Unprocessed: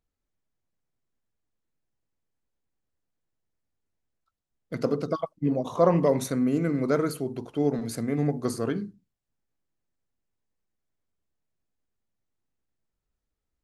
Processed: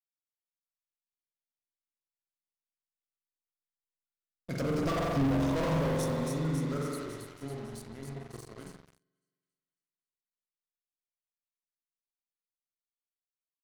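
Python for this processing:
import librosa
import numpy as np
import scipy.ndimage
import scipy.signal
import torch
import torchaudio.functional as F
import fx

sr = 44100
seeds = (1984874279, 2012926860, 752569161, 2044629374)

p1 = fx.doppler_pass(x, sr, speed_mps=17, closest_m=2.3, pass_at_s=5.09)
p2 = fx.low_shelf(p1, sr, hz=490.0, db=-8.5)
p3 = p2 + fx.echo_wet_highpass(p2, sr, ms=276, feedback_pct=62, hz=2000.0, wet_db=-6, dry=0)
p4 = fx.rev_spring(p3, sr, rt60_s=2.0, pass_ms=(44,), chirp_ms=40, drr_db=-2.0)
p5 = fx.leveller(p4, sr, passes=5)
p6 = fx.bass_treble(p5, sr, bass_db=10, treble_db=4)
p7 = fx.end_taper(p6, sr, db_per_s=420.0)
y = p7 * 10.0 ** (-7.5 / 20.0)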